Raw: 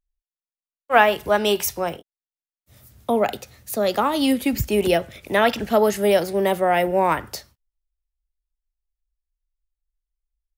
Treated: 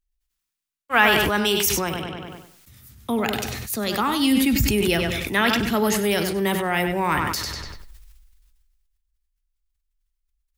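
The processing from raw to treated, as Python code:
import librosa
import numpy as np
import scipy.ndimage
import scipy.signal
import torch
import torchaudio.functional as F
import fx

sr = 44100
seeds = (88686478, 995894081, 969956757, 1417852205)

y = fx.peak_eq(x, sr, hz=600.0, db=-14.5, octaves=0.96)
y = fx.echo_filtered(y, sr, ms=97, feedback_pct=30, hz=4900.0, wet_db=-9.0)
y = fx.sustainer(y, sr, db_per_s=27.0)
y = F.gain(torch.from_numpy(y), 2.0).numpy()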